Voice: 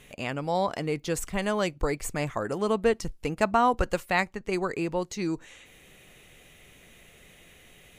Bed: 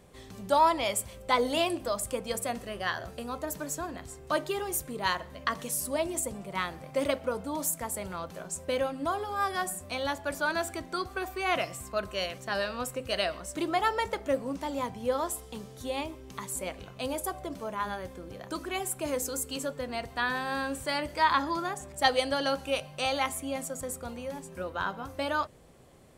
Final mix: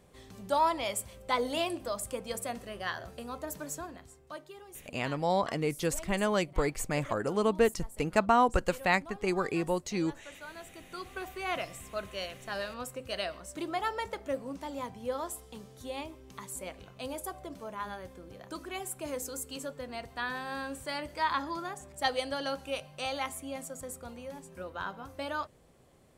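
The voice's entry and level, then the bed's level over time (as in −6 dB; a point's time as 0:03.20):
4.75 s, −1.5 dB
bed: 0:03.76 −4 dB
0:04.45 −17 dB
0:10.56 −17 dB
0:11.19 −5.5 dB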